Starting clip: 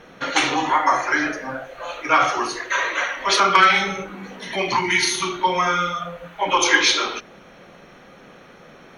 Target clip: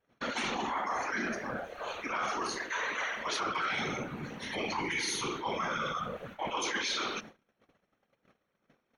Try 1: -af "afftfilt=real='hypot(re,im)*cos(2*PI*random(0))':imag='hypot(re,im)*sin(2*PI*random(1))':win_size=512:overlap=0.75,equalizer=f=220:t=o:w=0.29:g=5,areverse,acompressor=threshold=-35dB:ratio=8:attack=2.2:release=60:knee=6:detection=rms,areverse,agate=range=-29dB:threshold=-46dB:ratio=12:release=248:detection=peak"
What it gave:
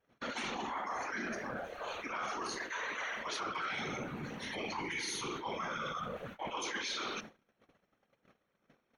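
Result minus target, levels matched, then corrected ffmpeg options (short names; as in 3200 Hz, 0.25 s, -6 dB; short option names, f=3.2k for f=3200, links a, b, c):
compressor: peak gain reduction +5 dB
-af "afftfilt=real='hypot(re,im)*cos(2*PI*random(0))':imag='hypot(re,im)*sin(2*PI*random(1))':win_size=512:overlap=0.75,equalizer=f=220:t=o:w=0.29:g=5,areverse,acompressor=threshold=-29dB:ratio=8:attack=2.2:release=60:knee=6:detection=rms,areverse,agate=range=-29dB:threshold=-46dB:ratio=12:release=248:detection=peak"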